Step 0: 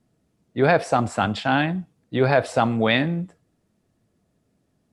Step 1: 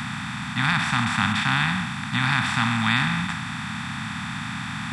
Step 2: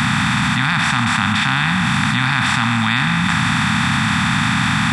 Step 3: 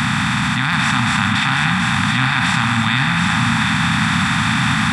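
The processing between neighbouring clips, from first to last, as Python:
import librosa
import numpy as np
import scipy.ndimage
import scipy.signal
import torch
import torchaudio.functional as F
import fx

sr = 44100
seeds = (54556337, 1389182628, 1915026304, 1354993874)

y1 = fx.bin_compress(x, sr, power=0.2)
y1 = scipy.signal.sosfilt(scipy.signal.ellip(3, 1.0, 50, [230.0, 950.0], 'bandstop', fs=sr, output='sos'), y1)
y1 = y1 * librosa.db_to_amplitude(-4.5)
y2 = fx.env_flatten(y1, sr, amount_pct=100)
y2 = y2 * librosa.db_to_amplitude(3.0)
y3 = y2 + 10.0 ** (-5.0 / 20.0) * np.pad(y2, (int(728 * sr / 1000.0), 0))[:len(y2)]
y3 = y3 * librosa.db_to_amplitude(-1.0)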